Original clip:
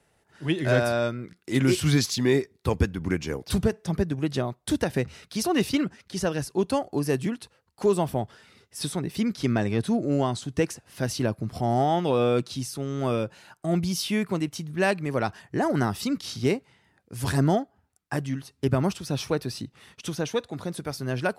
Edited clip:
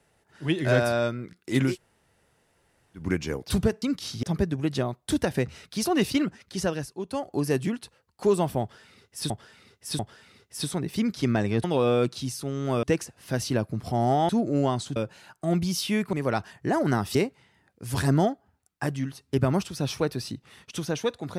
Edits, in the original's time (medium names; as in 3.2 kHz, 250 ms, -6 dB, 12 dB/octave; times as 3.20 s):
1.70–3.01 s: room tone, crossfade 0.16 s
6.23–6.98 s: dip -9.5 dB, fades 0.33 s linear
8.20–8.89 s: loop, 3 plays
9.85–10.52 s: swap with 11.98–13.17 s
14.34–15.02 s: delete
16.04–16.45 s: move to 3.82 s